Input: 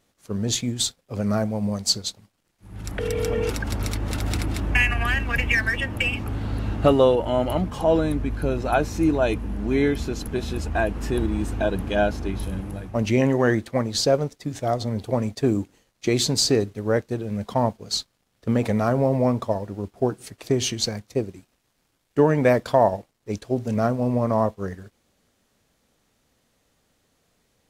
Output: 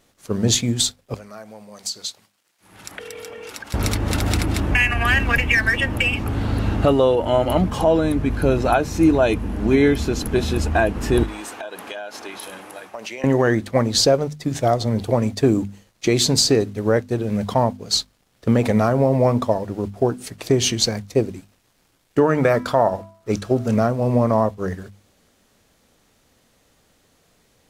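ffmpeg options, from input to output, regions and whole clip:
ffmpeg -i in.wav -filter_complex "[0:a]asettb=1/sr,asplit=3[link_01][link_02][link_03];[link_01]atrim=end=1.144[link_04];[link_02]atrim=start=1.14:end=3.74,asetpts=PTS-STARTPTS,afade=type=in:duration=0.004:curve=qsin,afade=type=out:start_time=2.596:duration=0.004:curve=qsin,acompressor=threshold=-30dB:ratio=16:attack=3.2:release=140:knee=1:detection=peak,highpass=frequency=1100:poles=1[link_05];[link_03]atrim=start=3.736[link_06];[link_04][link_05]acrossfade=duration=0.004:curve1=hsin:curve2=qsin[link_07];[link_07][link_06]acrossfade=duration=0.004:curve1=qsin:curve2=hsin,asettb=1/sr,asplit=3[link_08][link_09][link_10];[link_08]atrim=end=11.234[link_11];[link_09]atrim=start=11.23:end=13.24,asetpts=PTS-STARTPTS,afade=type=in:duration=0.004:curve=qsin,afade=type=out:start_time=2.006:duration=0.004:curve=qsin,highpass=690,acompressor=threshold=-35dB:ratio=16:attack=3.2:release=140:knee=1:detection=peak[link_12];[link_10]atrim=start=13.236[link_13];[link_11][link_12]acrossfade=duration=0.004:curve1=hsin:curve2=qsin[link_14];[link_14][link_13]acrossfade=duration=0.004:curve1=qsin:curve2=hsin,asettb=1/sr,asplit=3[link_15][link_16][link_17];[link_15]atrim=end=22.204[link_18];[link_16]atrim=start=22.2:end=23.76,asetpts=PTS-STARTPTS,afade=type=in:duration=0.004:curve=qsin,afade=type=out:start_time=1.556:duration=0.004:curve=qsin,equalizer=frequency=1300:width_type=o:width=0.3:gain=11,bandreject=frequency=329.1:width_type=h:width=4,bandreject=frequency=658.2:width_type=h:width=4,bandreject=frequency=987.3:width_type=h:width=4,bandreject=frequency=1316.4:width_type=h:width=4,bandreject=frequency=1645.5:width_type=h:width=4,bandreject=frequency=1974.6:width_type=h:width=4,bandreject=frequency=2303.7:width_type=h:width=4,bandreject=frequency=2632.8:width_type=h:width=4,bandreject=frequency=2961.9:width_type=h:width=4,bandreject=frequency=3291:width_type=h:width=4,bandreject=frequency=3620.1:width_type=h:width=4,bandreject=frequency=3949.2:width_type=h:width=4,bandreject=frequency=4278.3:width_type=h:width=4,bandreject=frequency=4607.4:width_type=h:width=4,bandreject=frequency=4936.5:width_type=h:width=4,bandreject=frequency=5265.6:width_type=h:width=4,bandreject=frequency=5594.7:width_type=h:width=4,bandreject=frequency=5923.8:width_type=h:width=4,bandreject=frequency=6252.9:width_type=h:width=4,bandreject=frequency=6582:width_type=h:width=4,bandreject=frequency=6911.1:width_type=h:width=4,bandreject=frequency=7240.2:width_type=h:width=4,bandreject=frequency=7569.3:width_type=h:width=4,bandreject=frequency=7898.4:width_type=h:width=4,bandreject=frequency=8227.5:width_type=h:width=4,bandreject=frequency=8556.6:width_type=h:width=4,bandreject=frequency=8885.7:width_type=h:width=4,bandreject=frequency=9214.8:width_type=h:width=4,bandreject=frequency=9543.9:width_type=h:width=4,bandreject=frequency=9873:width_type=h:width=4,bandreject=frequency=10202.1:width_type=h:width=4,bandreject=frequency=10531.2:width_type=h:width=4,bandreject=frequency=10860.3:width_type=h:width=4,bandreject=frequency=11189.4:width_type=h:width=4,bandreject=frequency=11518.5:width_type=h:width=4[link_19];[link_17]atrim=start=23.756[link_20];[link_18][link_19]acrossfade=duration=0.004:curve1=hsin:curve2=qsin[link_21];[link_21][link_20]acrossfade=duration=0.004:curve1=qsin:curve2=hsin,bandreject=frequency=50:width_type=h:width=6,bandreject=frequency=100:width_type=h:width=6,bandreject=frequency=150:width_type=h:width=6,bandreject=frequency=200:width_type=h:width=6,bandreject=frequency=250:width_type=h:width=6,alimiter=limit=-13.5dB:level=0:latency=1:release=403,volume=7.5dB" out.wav

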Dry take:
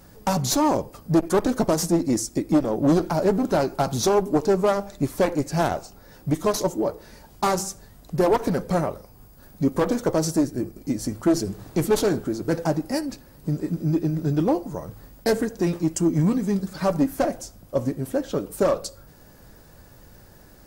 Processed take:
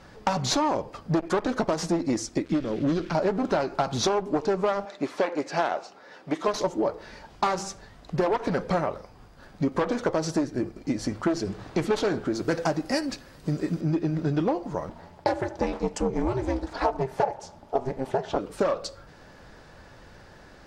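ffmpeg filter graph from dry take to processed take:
ffmpeg -i in.wav -filter_complex "[0:a]asettb=1/sr,asplit=3[link_01][link_02][link_03];[link_01]atrim=end=2.454[link_04];[link_02]atrim=start=2.45:end=3.15,asetpts=PTS-STARTPTS,afade=type=in:duration=0.004:curve=qsin,afade=type=out:start_time=0.696:duration=0.004:curve=qsin,aeval=exprs='val(0)*gte(abs(val(0)),0.0106)':channel_layout=same,acrossover=split=6700[link_05][link_06];[link_06]acompressor=threshold=-52dB:ratio=4:attack=1:release=60[link_07];[link_05][link_07]amix=inputs=2:normalize=0,equalizer=frequency=820:width=1.1:gain=-15[link_08];[link_03]atrim=start=3.146[link_09];[link_04][link_08]acrossfade=duration=0.004:curve1=hsin:curve2=qsin[link_10];[link_10][link_09]acrossfade=duration=0.004:curve1=qsin:curve2=hsin,asettb=1/sr,asplit=3[link_11][link_12][link_13];[link_11]atrim=end=4.854[link_14];[link_12]atrim=start=4.85:end=6.48,asetpts=PTS-STARTPTS,afade=type=in:duration=0.004:curve=qsin,afade=type=out:start_time=1.626:duration=0.004:curve=qsin,highpass=310,highshelf=frequency=8300:gain=-8.5[link_15];[link_13]atrim=start=6.476[link_16];[link_14][link_15]acrossfade=duration=0.004:curve1=hsin:curve2=qsin[link_17];[link_17][link_16]acrossfade=duration=0.004:curve1=qsin:curve2=hsin,asettb=1/sr,asplit=3[link_18][link_19][link_20];[link_18]atrim=end=12.354[link_21];[link_19]atrim=start=12.35:end=13.81,asetpts=PTS-STARTPTS,afade=type=in:duration=0.004:curve=qsin,afade=type=out:start_time=1.456:duration=0.004:curve=qsin,highshelf=frequency=5900:gain=12,bandreject=frequency=880:width=14[link_22];[link_20]atrim=start=13.806[link_23];[link_21][link_22]acrossfade=duration=0.004:curve1=hsin:curve2=qsin[link_24];[link_24][link_23]acrossfade=duration=0.004:curve1=qsin:curve2=hsin,asettb=1/sr,asplit=3[link_25][link_26][link_27];[link_25]atrim=end=14.894[link_28];[link_26]atrim=start=14.89:end=18.39,asetpts=PTS-STARTPTS,afade=type=in:duration=0.004:curve=qsin,afade=type=out:start_time=3.496:duration=0.004:curve=qsin,equalizer=frequency=740:width=3.2:gain=14,aeval=exprs='val(0)*sin(2*PI*130*n/s)':channel_layout=same[link_29];[link_27]atrim=start=18.386[link_30];[link_28][link_29]acrossfade=duration=0.004:curve1=hsin:curve2=qsin[link_31];[link_31][link_30]acrossfade=duration=0.004:curve1=qsin:curve2=hsin,lowpass=3700,lowshelf=frequency=500:gain=-9.5,acompressor=threshold=-28dB:ratio=6,volume=7dB" out.wav

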